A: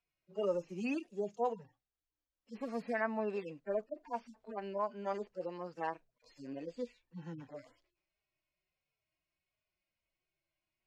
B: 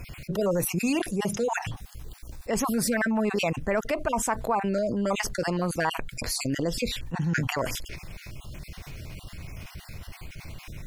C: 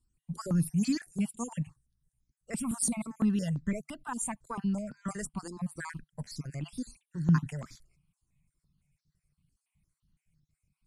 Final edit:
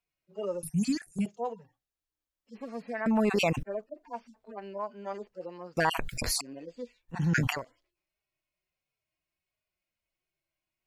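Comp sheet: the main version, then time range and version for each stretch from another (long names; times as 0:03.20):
A
0:00.63–0:01.26: punch in from C
0:03.06–0:03.63: punch in from B
0:05.77–0:06.41: punch in from B
0:07.16–0:07.57: punch in from B, crossfade 0.16 s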